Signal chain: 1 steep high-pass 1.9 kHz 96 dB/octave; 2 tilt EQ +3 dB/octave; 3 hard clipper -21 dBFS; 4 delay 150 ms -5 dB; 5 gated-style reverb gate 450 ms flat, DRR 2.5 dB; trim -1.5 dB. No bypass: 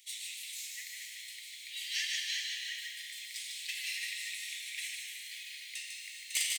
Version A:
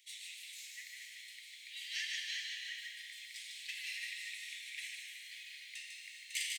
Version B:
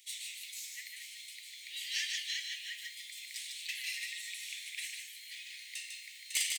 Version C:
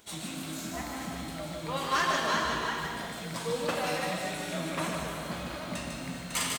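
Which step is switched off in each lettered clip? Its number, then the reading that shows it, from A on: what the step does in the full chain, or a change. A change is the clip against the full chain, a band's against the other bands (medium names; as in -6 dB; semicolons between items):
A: 2, crest factor change +2.0 dB; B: 5, echo-to-direct 0.5 dB to -5.0 dB; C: 1, crest factor change -2.5 dB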